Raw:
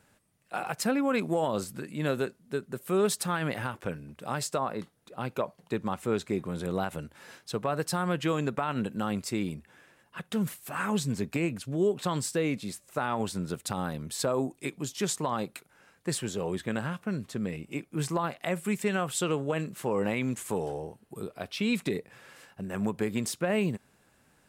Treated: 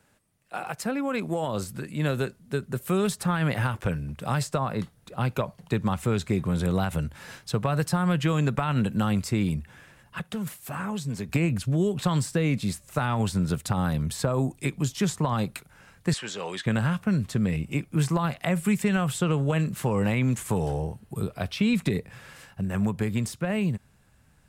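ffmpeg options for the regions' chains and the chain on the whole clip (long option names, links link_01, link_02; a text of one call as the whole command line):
ffmpeg -i in.wav -filter_complex "[0:a]asettb=1/sr,asplit=3[link_01][link_02][link_03];[link_01]atrim=end=10.194[link_04];[link_02]atrim=start=10.19:end=11.29,asetpts=PTS-STARTPTS,afade=type=in:duration=0.004:curve=qsin,afade=type=out:start_time=1.096:duration=0.004:curve=qsin,highpass=frequency=170:poles=1,acrossover=split=330|900[link_05][link_06][link_07];[link_05]acompressor=threshold=-43dB:ratio=4[link_08];[link_06]acompressor=threshold=-43dB:ratio=4[link_09];[link_07]acompressor=threshold=-46dB:ratio=4[link_10];[link_08][link_09][link_10]amix=inputs=3:normalize=0[link_11];[link_03]atrim=start=11.286[link_12];[link_04][link_11]acrossfade=duration=0.004:curve1=hsin:curve2=qsin[link_13];[link_13][link_12]acrossfade=duration=0.004:curve1=qsin:curve2=hsin,asettb=1/sr,asplit=3[link_14][link_15][link_16];[link_14]atrim=end=16.134[link_17];[link_15]atrim=start=16.13:end=16.66,asetpts=PTS-STARTPTS,afade=type=in:duration=0.004:curve=qsin,afade=type=out:start_time=0.526:duration=0.004:curve=qsin,highpass=310,lowpass=5800,tiltshelf=frequency=1100:gain=-8[link_18];[link_16]atrim=start=16.656[link_19];[link_17][link_18]acrossfade=duration=0.004:curve1=hsin:curve2=qsin[link_20];[link_20][link_19]acrossfade=duration=0.004:curve1=qsin:curve2=hsin,dynaudnorm=framelen=190:gausssize=21:maxgain=6.5dB,asubboost=boost=5:cutoff=140,acrossover=split=220|2100[link_21][link_22][link_23];[link_21]acompressor=threshold=-25dB:ratio=4[link_24];[link_22]acompressor=threshold=-25dB:ratio=4[link_25];[link_23]acompressor=threshold=-35dB:ratio=4[link_26];[link_24][link_25][link_26]amix=inputs=3:normalize=0" out.wav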